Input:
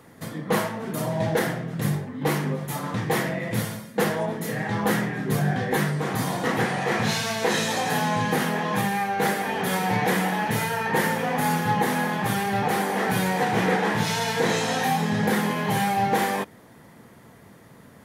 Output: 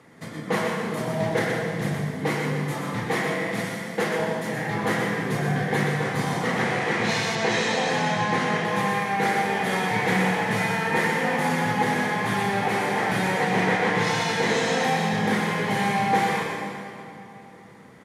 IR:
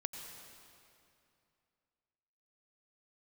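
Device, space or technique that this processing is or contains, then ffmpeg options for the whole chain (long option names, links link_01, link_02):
PA in a hall: -filter_complex "[0:a]highpass=100,equalizer=frequency=2100:width_type=o:width=0.31:gain=5.5,aecho=1:1:123:0.501[link_01];[1:a]atrim=start_sample=2205[link_02];[link_01][link_02]afir=irnorm=-1:irlink=0,asettb=1/sr,asplit=3[link_03][link_04][link_05];[link_03]atrim=end=3.074[link_06];[link_04]atrim=start=3.07:end=4.2,asetpts=PTS-STARTPTS,afade=type=in:duration=0.004:curve=qsin,afade=type=out:start_time=1.126:duration=0.004:curve=qsin,highpass=170[link_07];[link_05]atrim=start=4.196[link_08];[link_06][link_07]acrossfade=duration=0.004:curve1=hsin:curve2=qsin[link_09];[link_09][link_08]acrossfade=duration=0.004:curve1=qsin:curve2=hsin,asettb=1/sr,asplit=3[link_10][link_11][link_12];[link_10]atrim=end=7.354[link_13];[link_11]atrim=start=7.35:end=8.65,asetpts=PTS-STARTPTS,afade=type=in:duration=0.004:curve=qsin,afade=type=out:start_time=1.296:duration=0.004:curve=qsin,lowpass=7800[link_14];[link_12]atrim=start=8.646[link_15];[link_13][link_14]acrossfade=duration=0.004:curve1=hsin:curve2=qsin[link_16];[link_16][link_15]acrossfade=duration=0.004:curve1=qsin:curve2=hsin,lowpass=8300,asplit=2[link_17][link_18];[link_18]adelay=1399,volume=-28dB,highshelf=frequency=4000:gain=-31.5[link_19];[link_17][link_19]amix=inputs=2:normalize=0"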